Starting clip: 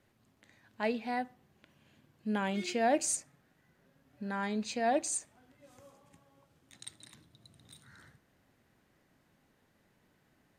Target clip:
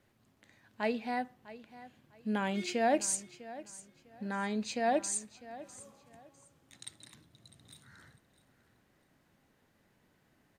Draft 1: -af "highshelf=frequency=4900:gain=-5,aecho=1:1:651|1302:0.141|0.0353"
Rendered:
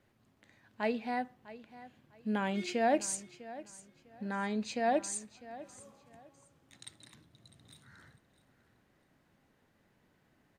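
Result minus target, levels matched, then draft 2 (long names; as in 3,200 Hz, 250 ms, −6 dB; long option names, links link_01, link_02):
8,000 Hz band −3.0 dB
-af "aecho=1:1:651|1302:0.141|0.0353"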